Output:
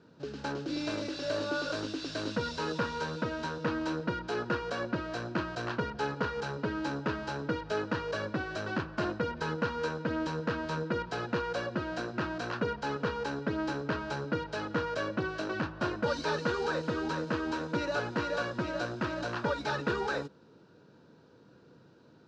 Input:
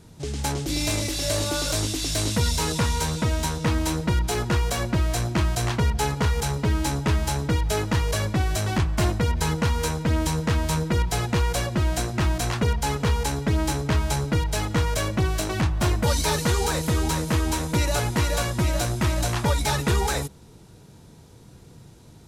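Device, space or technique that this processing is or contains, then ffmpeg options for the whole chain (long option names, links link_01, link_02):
kitchen radio: -af "highpass=210,equalizer=frequency=280:width_type=q:width=4:gain=3,equalizer=frequency=520:width_type=q:width=4:gain=5,equalizer=frequency=760:width_type=q:width=4:gain=-5,equalizer=frequency=1500:width_type=q:width=4:gain=8,equalizer=frequency=2100:width_type=q:width=4:gain=-10,equalizer=frequency=3400:width_type=q:width=4:gain=-7,lowpass=frequency=4300:width=0.5412,lowpass=frequency=4300:width=1.3066,volume=-6dB"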